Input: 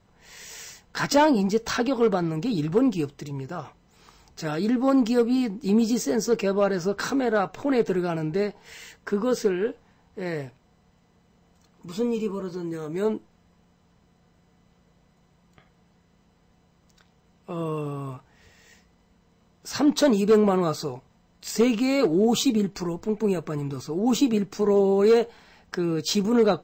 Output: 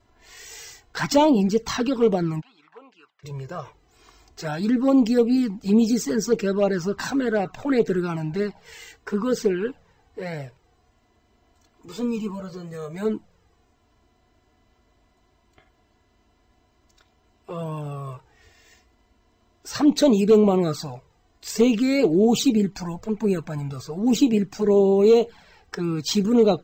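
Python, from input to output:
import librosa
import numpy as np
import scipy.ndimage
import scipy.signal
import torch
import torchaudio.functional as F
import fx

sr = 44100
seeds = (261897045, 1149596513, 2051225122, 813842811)

y = fx.env_flanger(x, sr, rest_ms=3.0, full_db=-16.5)
y = fx.ladder_bandpass(y, sr, hz=1600.0, resonance_pct=25, at=(2.4, 3.23), fade=0.02)
y = y * librosa.db_to_amplitude(3.5)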